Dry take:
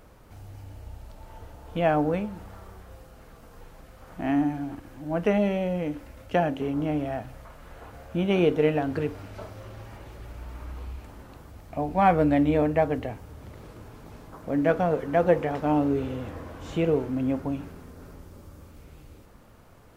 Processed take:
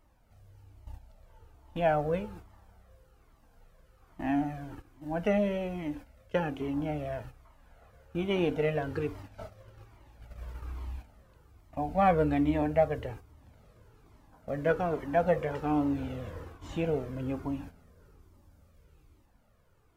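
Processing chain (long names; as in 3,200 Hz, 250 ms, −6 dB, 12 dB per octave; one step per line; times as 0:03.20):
noise gate −39 dBFS, range −10 dB
flanger whose copies keep moving one way falling 1.2 Hz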